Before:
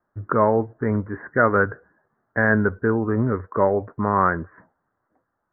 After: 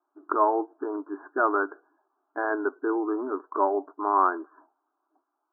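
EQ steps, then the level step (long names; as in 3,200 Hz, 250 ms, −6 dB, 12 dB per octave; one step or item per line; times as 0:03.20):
linear-phase brick-wall band-pass 270–1,800 Hz
phaser with its sweep stopped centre 510 Hz, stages 6
0.0 dB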